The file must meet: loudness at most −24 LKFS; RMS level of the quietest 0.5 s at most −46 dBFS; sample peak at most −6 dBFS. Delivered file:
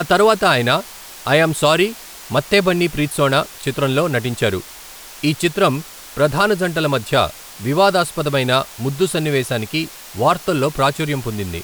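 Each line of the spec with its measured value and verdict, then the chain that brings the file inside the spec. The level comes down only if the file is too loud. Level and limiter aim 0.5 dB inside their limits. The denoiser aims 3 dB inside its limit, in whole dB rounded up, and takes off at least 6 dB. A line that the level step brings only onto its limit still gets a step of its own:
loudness −17.5 LKFS: out of spec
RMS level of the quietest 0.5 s −37 dBFS: out of spec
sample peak −2.5 dBFS: out of spec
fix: broadband denoise 6 dB, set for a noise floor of −37 dBFS
level −7 dB

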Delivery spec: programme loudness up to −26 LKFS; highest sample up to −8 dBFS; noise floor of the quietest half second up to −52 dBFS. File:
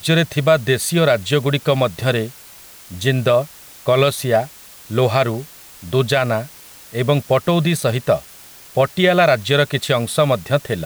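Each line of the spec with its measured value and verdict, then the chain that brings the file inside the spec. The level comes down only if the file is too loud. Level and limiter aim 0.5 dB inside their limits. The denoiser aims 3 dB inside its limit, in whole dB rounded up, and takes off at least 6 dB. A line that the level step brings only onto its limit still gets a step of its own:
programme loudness −17.5 LKFS: out of spec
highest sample −4.5 dBFS: out of spec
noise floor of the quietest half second −42 dBFS: out of spec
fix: broadband denoise 6 dB, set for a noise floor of −42 dBFS
level −9 dB

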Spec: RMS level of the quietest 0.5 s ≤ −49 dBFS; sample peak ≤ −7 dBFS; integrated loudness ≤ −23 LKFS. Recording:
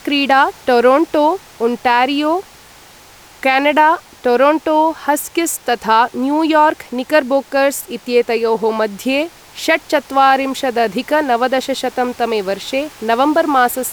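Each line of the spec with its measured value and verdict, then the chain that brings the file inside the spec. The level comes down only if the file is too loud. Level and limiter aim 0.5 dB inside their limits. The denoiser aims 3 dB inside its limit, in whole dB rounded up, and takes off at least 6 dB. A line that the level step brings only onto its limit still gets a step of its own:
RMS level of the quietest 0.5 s −42 dBFS: out of spec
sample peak −1.5 dBFS: out of spec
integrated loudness −15.0 LKFS: out of spec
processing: level −8.5 dB

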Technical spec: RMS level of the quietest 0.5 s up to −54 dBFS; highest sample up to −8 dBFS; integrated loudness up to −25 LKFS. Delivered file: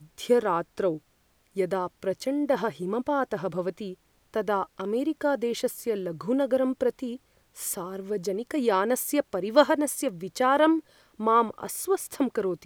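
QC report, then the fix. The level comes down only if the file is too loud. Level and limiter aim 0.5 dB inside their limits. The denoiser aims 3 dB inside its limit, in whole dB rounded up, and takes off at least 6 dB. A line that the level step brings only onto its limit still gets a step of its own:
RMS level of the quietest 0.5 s −66 dBFS: in spec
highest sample −5.5 dBFS: out of spec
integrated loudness −27.0 LKFS: in spec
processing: brickwall limiter −8.5 dBFS

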